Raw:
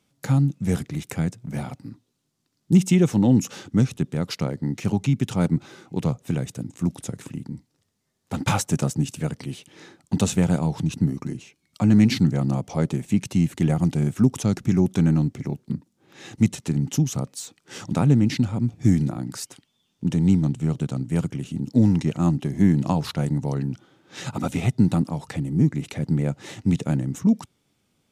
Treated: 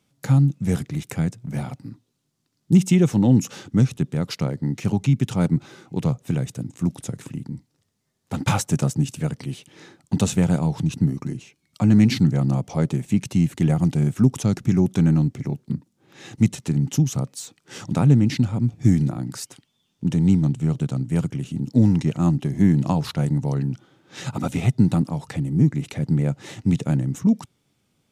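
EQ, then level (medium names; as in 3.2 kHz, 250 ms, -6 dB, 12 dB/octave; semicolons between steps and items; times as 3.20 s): peaking EQ 130 Hz +3.5 dB 0.67 oct; 0.0 dB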